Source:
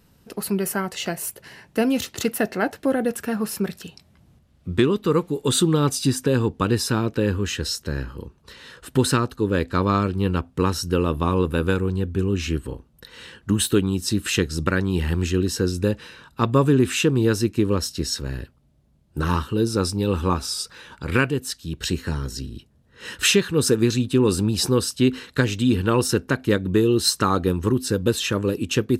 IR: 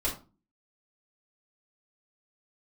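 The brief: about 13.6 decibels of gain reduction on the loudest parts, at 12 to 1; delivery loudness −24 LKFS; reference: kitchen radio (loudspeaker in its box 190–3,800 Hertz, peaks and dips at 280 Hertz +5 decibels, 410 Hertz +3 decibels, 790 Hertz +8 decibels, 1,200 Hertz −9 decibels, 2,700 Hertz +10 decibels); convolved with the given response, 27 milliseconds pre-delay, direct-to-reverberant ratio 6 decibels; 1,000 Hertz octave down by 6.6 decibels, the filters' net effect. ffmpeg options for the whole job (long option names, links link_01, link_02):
-filter_complex "[0:a]equalizer=frequency=1000:width_type=o:gain=-8.5,acompressor=threshold=-28dB:ratio=12,asplit=2[link_01][link_02];[1:a]atrim=start_sample=2205,adelay=27[link_03];[link_02][link_03]afir=irnorm=-1:irlink=0,volume=-12.5dB[link_04];[link_01][link_04]amix=inputs=2:normalize=0,highpass=190,equalizer=frequency=280:width_type=q:width=4:gain=5,equalizer=frequency=410:width_type=q:width=4:gain=3,equalizer=frequency=790:width_type=q:width=4:gain=8,equalizer=frequency=1200:width_type=q:width=4:gain=-9,equalizer=frequency=2700:width_type=q:width=4:gain=10,lowpass=frequency=3800:width=0.5412,lowpass=frequency=3800:width=1.3066,volume=8dB"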